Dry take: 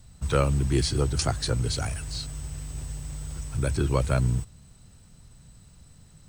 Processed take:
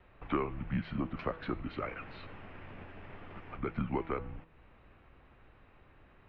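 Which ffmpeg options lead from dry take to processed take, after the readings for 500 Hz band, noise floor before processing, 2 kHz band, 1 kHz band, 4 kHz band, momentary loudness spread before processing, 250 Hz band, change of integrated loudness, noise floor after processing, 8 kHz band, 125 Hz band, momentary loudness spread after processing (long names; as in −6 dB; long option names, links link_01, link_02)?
−9.5 dB, −53 dBFS, −6.5 dB, −5.0 dB, −21.0 dB, 13 LU, −5.5 dB, −11.0 dB, −61 dBFS, below −40 dB, −16.5 dB, 15 LU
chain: -af "acompressor=threshold=-32dB:ratio=4,highpass=frequency=210:width_type=q:width=0.5412,highpass=frequency=210:width_type=q:width=1.307,lowpass=frequency=2700:width_type=q:width=0.5176,lowpass=frequency=2700:width_type=q:width=0.7071,lowpass=frequency=2700:width_type=q:width=1.932,afreqshift=-160,bandreject=frequency=163.1:width_type=h:width=4,bandreject=frequency=326.2:width_type=h:width=4,bandreject=frequency=489.3:width_type=h:width=4,bandreject=frequency=652.4:width_type=h:width=4,bandreject=frequency=815.5:width_type=h:width=4,bandreject=frequency=978.6:width_type=h:width=4,bandreject=frequency=1141.7:width_type=h:width=4,bandreject=frequency=1304.8:width_type=h:width=4,bandreject=frequency=1467.9:width_type=h:width=4,bandreject=frequency=1631:width_type=h:width=4,bandreject=frequency=1794.1:width_type=h:width=4,bandreject=frequency=1957.2:width_type=h:width=4,bandreject=frequency=2120.3:width_type=h:width=4,bandreject=frequency=2283.4:width_type=h:width=4,bandreject=frequency=2446.5:width_type=h:width=4,bandreject=frequency=2609.6:width_type=h:width=4,bandreject=frequency=2772.7:width_type=h:width=4,bandreject=frequency=2935.8:width_type=h:width=4,bandreject=frequency=3098.9:width_type=h:width=4,bandreject=frequency=3262:width_type=h:width=4,bandreject=frequency=3425.1:width_type=h:width=4,bandreject=frequency=3588.2:width_type=h:width=4,bandreject=frequency=3751.3:width_type=h:width=4,bandreject=frequency=3914.4:width_type=h:width=4,bandreject=frequency=4077.5:width_type=h:width=4,bandreject=frequency=4240.6:width_type=h:width=4,bandreject=frequency=4403.7:width_type=h:width=4,bandreject=frequency=4566.8:width_type=h:width=4,bandreject=frequency=4729.9:width_type=h:width=4,bandreject=frequency=4893:width_type=h:width=4,bandreject=frequency=5056.1:width_type=h:width=4,bandreject=frequency=5219.2:width_type=h:width=4,bandreject=frequency=5382.3:width_type=h:width=4,bandreject=frequency=5545.4:width_type=h:width=4,volume=5dB"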